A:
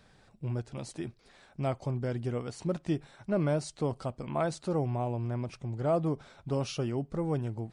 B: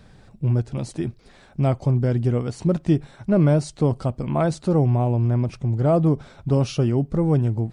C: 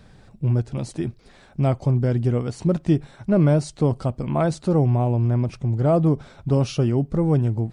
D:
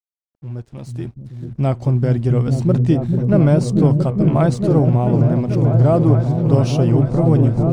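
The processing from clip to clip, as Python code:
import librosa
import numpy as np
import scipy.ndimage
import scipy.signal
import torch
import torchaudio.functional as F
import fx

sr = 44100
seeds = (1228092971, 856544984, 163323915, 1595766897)

y1 = fx.low_shelf(x, sr, hz=350.0, db=9.5)
y1 = F.gain(torch.from_numpy(y1), 5.5).numpy()
y2 = y1
y3 = fx.fade_in_head(y2, sr, length_s=1.9)
y3 = np.sign(y3) * np.maximum(np.abs(y3) - 10.0 ** (-53.0 / 20.0), 0.0)
y3 = fx.echo_opening(y3, sr, ms=436, hz=200, octaves=1, feedback_pct=70, wet_db=0)
y3 = F.gain(torch.from_numpy(y3), 3.0).numpy()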